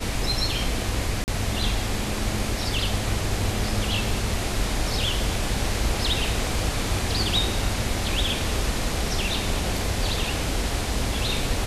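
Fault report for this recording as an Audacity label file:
1.240000	1.280000	gap 39 ms

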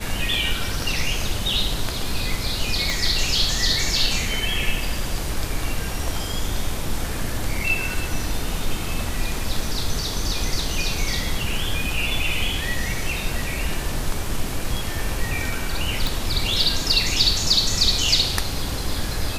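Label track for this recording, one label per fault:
2.900000	2.900000	pop
16.070000	16.070000	pop

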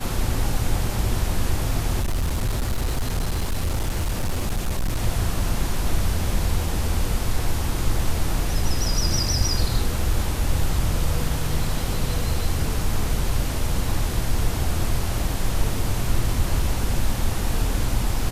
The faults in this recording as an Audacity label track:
2.010000	5.020000	clipped -19 dBFS

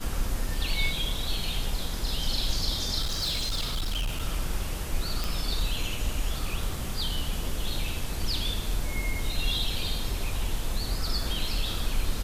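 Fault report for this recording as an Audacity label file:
3.010000	4.230000	clipped -25 dBFS
5.240000	5.240000	pop
11.230000	11.230000	gap 2.4 ms

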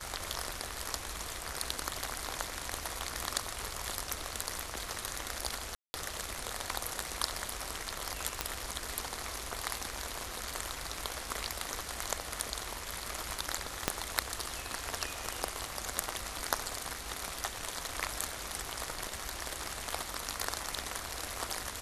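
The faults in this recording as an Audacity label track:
5.750000	5.940000	gap 0.19 s
8.410000	8.410000	pop -12 dBFS
13.880000	13.880000	pop -9 dBFS

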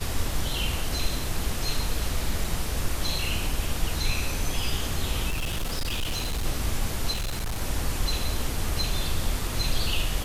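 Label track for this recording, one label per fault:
2.440000	2.440000	gap 3.9 ms
5.300000	6.440000	clipped -24 dBFS
7.130000	7.620000	clipped -25.5 dBFS

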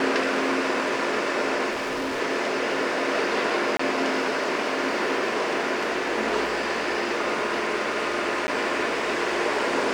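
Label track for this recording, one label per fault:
1.710000	2.210000	clipped -25 dBFS
3.770000	3.790000	gap 24 ms
8.470000	8.480000	gap 10 ms

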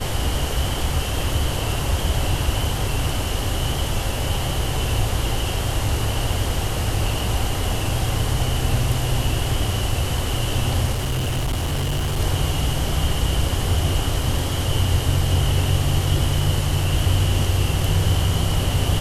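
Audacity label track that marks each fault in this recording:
10.920000	12.200000	clipped -19 dBFS

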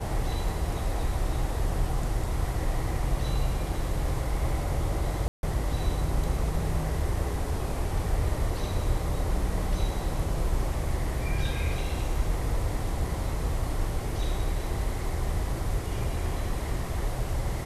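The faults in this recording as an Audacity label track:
5.280000	5.430000	gap 0.151 s

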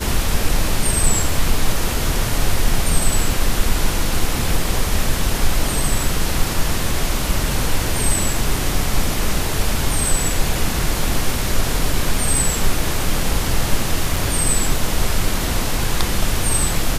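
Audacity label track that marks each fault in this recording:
14.160000	14.160000	gap 4.6 ms

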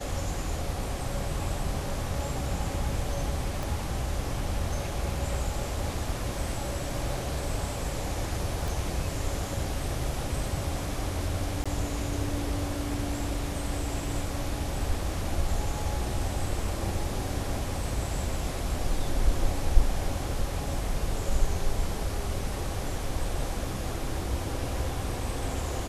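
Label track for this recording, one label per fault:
3.630000	3.630000	pop
8.680000	8.680000	pop
11.640000	11.660000	gap 16 ms

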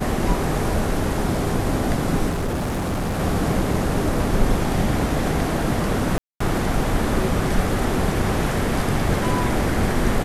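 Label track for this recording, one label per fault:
2.290000	3.200000	clipped -20.5 dBFS
6.180000	6.400000	gap 0.224 s

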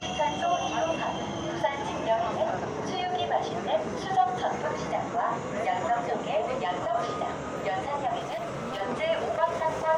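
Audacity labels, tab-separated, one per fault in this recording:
8.190000	8.820000	clipped -29.5 dBFS

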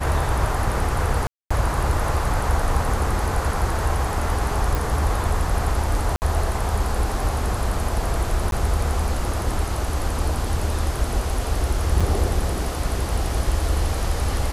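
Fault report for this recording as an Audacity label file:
1.270000	1.500000	gap 0.235 s
4.750000	4.750000	pop
6.160000	6.220000	gap 59 ms
8.510000	8.520000	gap 12 ms
12.000000	12.010000	gap 5.6 ms

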